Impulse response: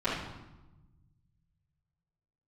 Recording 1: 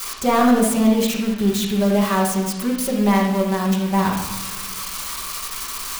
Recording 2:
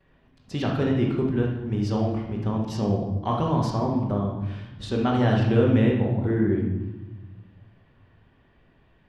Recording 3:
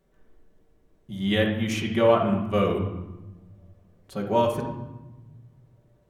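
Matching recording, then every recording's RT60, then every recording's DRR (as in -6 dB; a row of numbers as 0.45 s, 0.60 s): 2; 1.0 s, 1.0 s, 1.1 s; -10.5 dB, -14.5 dB, -2.5 dB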